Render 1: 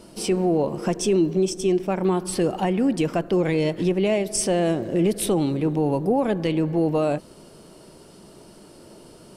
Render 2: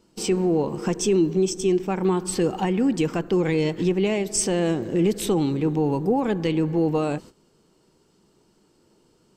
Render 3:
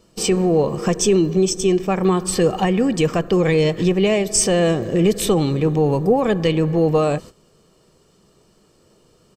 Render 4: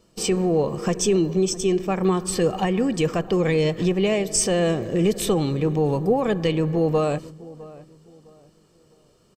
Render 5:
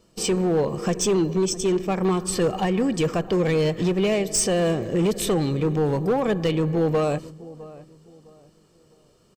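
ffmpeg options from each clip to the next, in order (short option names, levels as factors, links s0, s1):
-af "agate=range=0.2:threshold=0.0126:ratio=16:detection=peak,superequalizer=8b=0.447:15b=1.41:16b=0.316"
-af "aecho=1:1:1.7:0.44,volume=2"
-filter_complex "[0:a]asplit=2[s0][s1];[s1]adelay=658,lowpass=f=1400:p=1,volume=0.112,asplit=2[s2][s3];[s3]adelay=658,lowpass=f=1400:p=1,volume=0.32,asplit=2[s4][s5];[s5]adelay=658,lowpass=f=1400:p=1,volume=0.32[s6];[s0][s2][s4][s6]amix=inputs=4:normalize=0,volume=0.631"
-af "volume=6.31,asoftclip=hard,volume=0.158"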